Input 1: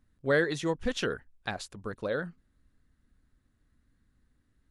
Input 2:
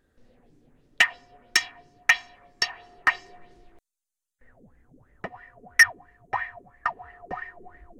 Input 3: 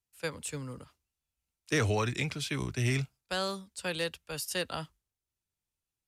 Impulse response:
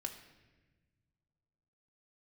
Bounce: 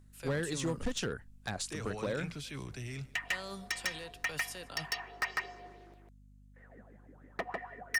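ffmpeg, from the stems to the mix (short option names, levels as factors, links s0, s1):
-filter_complex "[0:a]equalizer=f=8000:t=o:w=1.2:g=9.5,acrossover=split=200[s0][s1];[s1]acompressor=threshold=0.02:ratio=8[s2];[s0][s2]amix=inputs=2:normalize=0,volume=1.19[s3];[1:a]highpass=260,highshelf=f=4800:g=-6,acompressor=threshold=0.0562:ratio=10,adelay=2150,volume=1.12,asplit=2[s4][s5];[s5]volume=0.668[s6];[2:a]acompressor=threshold=0.0126:ratio=6,alimiter=level_in=4.22:limit=0.0631:level=0:latency=1:release=27,volume=0.237,volume=1.26,asplit=3[s7][s8][s9];[s8]volume=0.0794[s10];[s9]apad=whole_len=447600[s11];[s4][s11]sidechaincompress=threshold=0.00398:ratio=8:attack=42:release=730[s12];[s6][s10]amix=inputs=2:normalize=0,aecho=0:1:150:1[s13];[s3][s12][s7][s13]amix=inputs=4:normalize=0,asoftclip=type=hard:threshold=0.0447,aeval=exprs='val(0)+0.00141*(sin(2*PI*50*n/s)+sin(2*PI*2*50*n/s)/2+sin(2*PI*3*50*n/s)/3+sin(2*PI*4*50*n/s)/4+sin(2*PI*5*50*n/s)/5)':c=same"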